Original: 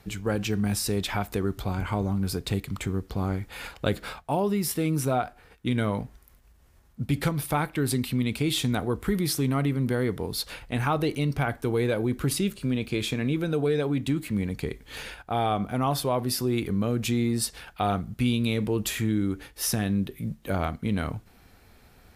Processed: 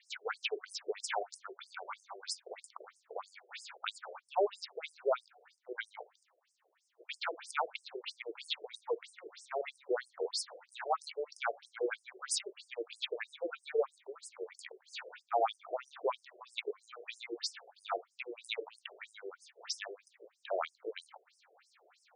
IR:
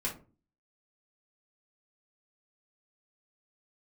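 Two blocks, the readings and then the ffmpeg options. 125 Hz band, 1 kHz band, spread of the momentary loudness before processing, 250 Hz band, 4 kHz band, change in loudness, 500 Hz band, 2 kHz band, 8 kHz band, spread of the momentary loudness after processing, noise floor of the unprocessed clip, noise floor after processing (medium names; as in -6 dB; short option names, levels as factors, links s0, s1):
under -40 dB, -8.0 dB, 6 LU, -27.5 dB, -8.0 dB, -12.0 dB, -8.5 dB, -8.0 dB, -11.5 dB, 14 LU, -57 dBFS, -77 dBFS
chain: -af "highpass=240,afftfilt=real='re*between(b*sr/1024,480*pow(7100/480,0.5+0.5*sin(2*PI*3.1*pts/sr))/1.41,480*pow(7100/480,0.5+0.5*sin(2*PI*3.1*pts/sr))*1.41)':imag='im*between(b*sr/1024,480*pow(7100/480,0.5+0.5*sin(2*PI*3.1*pts/sr))/1.41,480*pow(7100/480,0.5+0.5*sin(2*PI*3.1*pts/sr))*1.41)':win_size=1024:overlap=0.75"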